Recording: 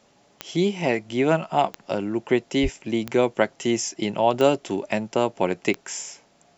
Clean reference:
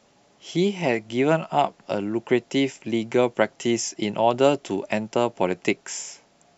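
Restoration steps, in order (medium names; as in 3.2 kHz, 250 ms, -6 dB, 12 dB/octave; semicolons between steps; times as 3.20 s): de-click; 2.62–2.74 s: high-pass 140 Hz 24 dB/octave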